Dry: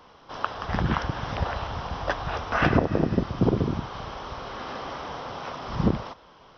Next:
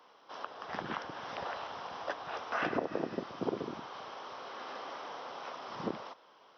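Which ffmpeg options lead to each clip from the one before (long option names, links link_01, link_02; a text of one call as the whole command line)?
ffmpeg -i in.wav -filter_complex "[0:a]highpass=350,acrossover=split=580[link_01][link_02];[link_02]alimiter=limit=-16dB:level=0:latency=1:release=354[link_03];[link_01][link_03]amix=inputs=2:normalize=0,volume=-7.5dB" out.wav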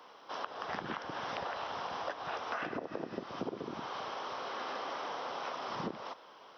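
ffmpeg -i in.wav -af "acompressor=threshold=-40dB:ratio=10,volume=5.5dB" out.wav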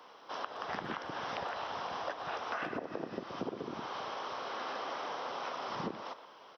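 ffmpeg -i in.wav -filter_complex "[0:a]asplit=2[link_01][link_02];[link_02]adelay=120,highpass=300,lowpass=3400,asoftclip=type=hard:threshold=-30dB,volume=-13dB[link_03];[link_01][link_03]amix=inputs=2:normalize=0" out.wav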